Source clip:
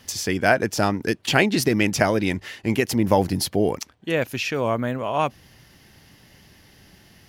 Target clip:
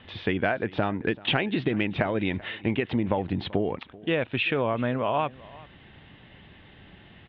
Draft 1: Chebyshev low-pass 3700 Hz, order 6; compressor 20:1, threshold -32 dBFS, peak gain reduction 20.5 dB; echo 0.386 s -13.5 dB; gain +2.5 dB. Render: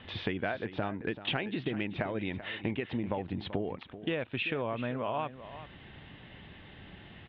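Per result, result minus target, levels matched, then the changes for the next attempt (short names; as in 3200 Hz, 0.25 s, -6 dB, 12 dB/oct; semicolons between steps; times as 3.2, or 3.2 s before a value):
compressor: peak gain reduction +8 dB; echo-to-direct +8 dB
change: compressor 20:1, threshold -23.5 dBFS, peak gain reduction 12.5 dB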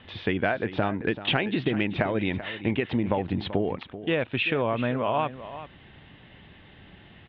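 echo-to-direct +8 dB
change: echo 0.386 s -21.5 dB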